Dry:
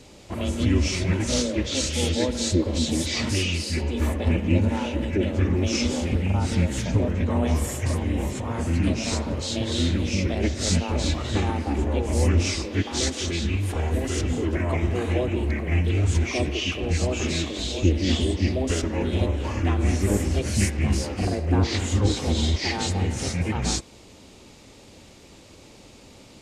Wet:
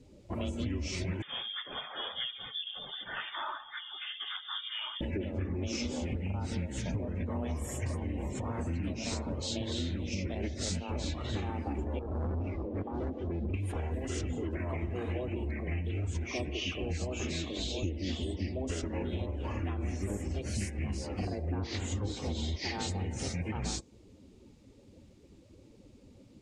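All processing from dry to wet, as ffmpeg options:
-filter_complex "[0:a]asettb=1/sr,asplit=3[a][b][c];[a]atrim=end=1.224[d];[b]atrim=start=1.22:end=5.01,asetpts=PTS-STARTPTS,afade=t=in:d=0.004:c=qsin,afade=t=out:st=3.786:d=0.004:c=qsin,highpass=660,highshelf=f=2.3k:g=-4.5,lowpass=f=3.2k:t=q:w=0.5098,lowpass=f=3.2k:t=q:w=0.6013,lowpass=f=3.2k:t=q:w=0.9,lowpass=f=3.2k:t=q:w=2.563,afreqshift=-3800[e];[c]atrim=start=5.006[f];[d][e]acrossfade=d=0.004:c1=hsin:c2=qsin[g];[g][f]acrossfade=d=0.004:c1=qsin:c2=hsin,asettb=1/sr,asplit=3[h][i][j];[h]atrim=end=11.994[k];[i]atrim=start=11.99:end=13.54,asetpts=PTS-STARTPTS,afade=t=in:d=0.004:c=qsin,afade=t=out:st=1.546:d=0.004:c=qsin,lowpass=1.2k,asoftclip=type=hard:threshold=-26.5dB[l];[j]atrim=start=13.536[m];[k][l]acrossfade=d=0.004:c1=hsin:c2=qsin[n];[n][m]acrossfade=d=0.004:c1=qsin:c2=hsin,afftdn=nr=16:nf=-41,acompressor=threshold=-28dB:ratio=6,volume=-3.5dB"

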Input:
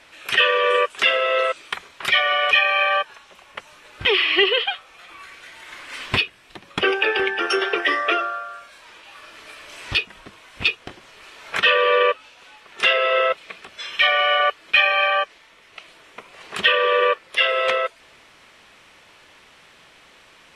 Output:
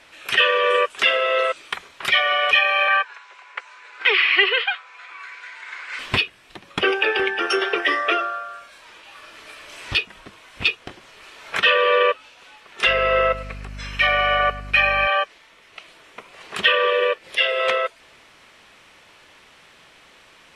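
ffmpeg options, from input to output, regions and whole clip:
-filter_complex "[0:a]asettb=1/sr,asplit=3[a][b][c];[a]atrim=end=2.884[d];[b]atrim=start=2.88:end=5.99,asetpts=PTS-STARTPTS,afade=t=in:d=0.004:c=qsin,afade=t=out:st=3.106:d=0.004:c=qsin,highpass=f=440:w=0.5412,highpass=f=440:w=1.3066,equalizer=f=600:t=q:w=4:g=-8,equalizer=f=1.5k:t=q:w=4:g=7,equalizer=f=2.2k:t=q:w=4:g=6,equalizer=f=3.2k:t=q:w=4:g=-4,equalizer=f=5.8k:t=q:w=4:g=-4,lowpass=f=7.3k:w=0.5412,lowpass=f=7.3k:w=1.3066,aeval=exprs='val(0)+0.00316*sin(2*PI*1000*n/s)':c=same[e];[c]atrim=start=5.986[f];[d][e]acrossfade=d=0.004:c1=hsin:c2=qsin[g];[g][f]acrossfade=d=0.004:c1=qsin:c2=hsin,asettb=1/sr,asplit=3[h][i][j];[h]atrim=end=12.874[k];[i]atrim=start=12.87:end=15.07,asetpts=PTS-STARTPTS,afade=t=in:d=0.004:c=qsin,afade=t=out:st=2.196:d=0.004:c=qsin,equalizer=f=3.4k:w=4.8:g=-10.5,aeval=exprs='val(0)+0.02*(sin(2*PI*50*n/s)+sin(2*PI*2*50*n/s)/2+sin(2*PI*3*50*n/s)/3+sin(2*PI*4*50*n/s)/4+sin(2*PI*5*50*n/s)/5)':c=same,aecho=1:1:102|204|306:0.15|0.0509|0.0173,atrim=end_sample=97020[l];[j]atrim=start=15.066[m];[k][l]acrossfade=d=0.004:c1=hsin:c2=qsin[n];[n][m]acrossfade=d=0.004:c1=qsin:c2=hsin,asettb=1/sr,asplit=3[o][p][q];[o]atrim=end=16.904[r];[p]atrim=start=16.9:end=17.6,asetpts=PTS-STARTPTS,afade=t=in:d=0.004:c=qsin,afade=t=out:st=0.696:d=0.004:c=qsin,equalizer=f=1.2k:t=o:w=0.75:g=-7,acompressor=mode=upward:threshold=-33dB:ratio=2.5:attack=3.2:release=140:knee=2.83:detection=peak[s];[q]atrim=start=17.596[t];[r][s]acrossfade=d=0.004:c1=hsin:c2=qsin[u];[u][t]acrossfade=d=0.004:c1=qsin:c2=hsin"

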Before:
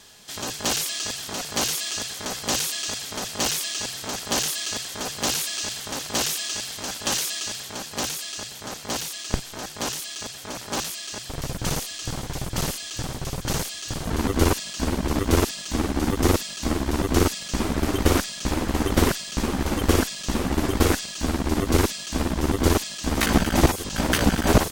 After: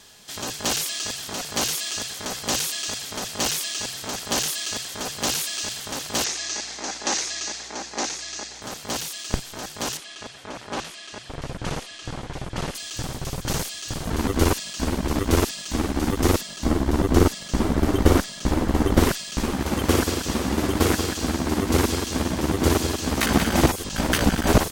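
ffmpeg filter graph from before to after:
-filter_complex "[0:a]asettb=1/sr,asplit=3[a][b][c];[a]atrim=end=6.244[d];[b]atrim=start=6.24:end=8.62,asetpts=PTS-STARTPTS,afade=t=in:d=0.004:c=qsin,afade=t=out:st=2.376:d=0.004:c=qsin,highpass=f=210:w=0.5412,highpass=f=210:w=1.3066,equalizer=f=340:t=q:w=4:g=4,equalizer=f=810:t=q:w=4:g=5,equalizer=f=2k:t=q:w=4:g=4,equalizer=f=3.1k:t=q:w=4:g=-6,equalizer=f=6.3k:t=q:w=4:g=4,lowpass=f=7.1k:w=0.5412,lowpass=f=7.1k:w=1.3066,aeval=exprs='val(0)+0.00178*(sin(2*PI*60*n/s)+sin(2*PI*2*60*n/s)/2+sin(2*PI*3*60*n/s)/3+sin(2*PI*4*60*n/s)/4+sin(2*PI*5*60*n/s)/5)':c=same[e];[c]atrim=start=8.616[f];[d][e]acrossfade=d=0.004:c1=hsin:c2=qsin[g];[g][f]acrossfade=d=0.004:c1=qsin:c2=hsin,asettb=1/sr,asplit=3[h][i][j];[h]atrim=end=9.974[k];[i]atrim=start=9.97:end=12.75,asetpts=PTS-STARTPTS,afade=t=in:d=0.004:c=qsin,afade=t=out:st=2.776:d=0.004:c=qsin,lowpass=f=11k:w=0.5412,lowpass=f=11k:w=1.3066,bass=f=250:g=-3,treble=f=4k:g=-11[l];[j]atrim=start=12.746[m];[k][l]acrossfade=d=0.004:c1=hsin:c2=qsin[n];[n][m]acrossfade=d=0.004:c1=qsin:c2=hsin,asettb=1/sr,asplit=3[o][p][q];[o]atrim=end=16.414[r];[p]atrim=start=16.41:end=19.01,asetpts=PTS-STARTPTS,afade=t=in:d=0.004:c=qsin,afade=t=out:st=2.596:d=0.004:c=qsin,tiltshelf=f=1.4k:g=3.5,bandreject=f=2.5k:w=24[s];[q]atrim=start=19.006[t];[r][s]acrossfade=d=0.004:c1=hsin:c2=qsin[u];[u][t]acrossfade=d=0.004:c1=qsin:c2=hsin,asettb=1/sr,asplit=3[v][w][x];[v]atrim=end=19.544[y];[w]atrim=start=19.54:end=23.69,asetpts=PTS-STARTPTS,afade=t=in:d=0.004:c=qsin,afade=t=out:st=4.146:d=0.004:c=qsin,highpass=60,aecho=1:1:184|368|552|736|920:0.473|0.189|0.0757|0.0303|0.0121,atrim=end_sample=183015[z];[x]atrim=start=23.686[aa];[y][z]acrossfade=d=0.004:c1=hsin:c2=qsin[ab];[ab][aa]acrossfade=d=0.004:c1=qsin:c2=hsin"

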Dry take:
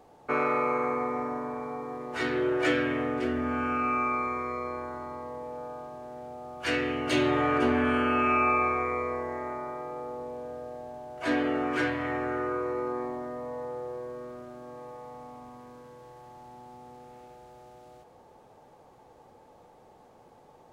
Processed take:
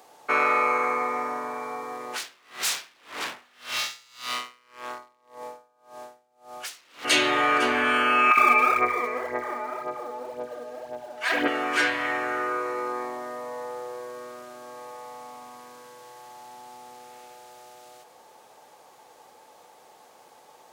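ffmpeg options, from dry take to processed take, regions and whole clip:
-filter_complex "[0:a]asettb=1/sr,asplit=3[a][b][c];[a]atrim=end=2.124[d];[b]atrim=start=2.12:end=7.05,asetpts=PTS-STARTPTS,afade=t=in:d=0.004:c=qsin,afade=t=out:st=4.926:d=0.004:c=qsin,aeval=exprs='0.0282*(abs(mod(val(0)/0.0282+3,4)-2)-1)':c=same,aeval=exprs='val(0)*pow(10,-31*(0.5-0.5*cos(2*PI*1.8*n/s))/20)':c=same[e];[c]atrim=start=7.046[f];[d][e]acrossfade=d=0.004:c1=hsin:c2=qsin[g];[g][f]acrossfade=d=0.004:c1=qsin:c2=hsin,asettb=1/sr,asplit=3[h][i][j];[h]atrim=end=8.314[k];[i]atrim=start=8.31:end=11.48,asetpts=PTS-STARTPTS,afade=t=in:d=0.004:c=qsin,afade=t=out:st=3.166:d=0.004:c=qsin,highshelf=f=3.9k:g=-11.5,acrossover=split=890[l][m];[l]adelay=60[n];[n][m]amix=inputs=2:normalize=0,atrim=end_sample=139797,aphaser=in_gain=1:out_gain=1:delay=4.7:decay=0.61:speed=1.9:type=sinusoidal[o];[j]atrim=start=11.476[p];[k][o]acrossfade=d=0.004:c1=hsin:c2=qsin[q];[q][p]acrossfade=d=0.004:c1=qsin:c2=hsin,highpass=f=1.3k:p=1,highshelf=f=3.8k:g=7,volume=9dB"

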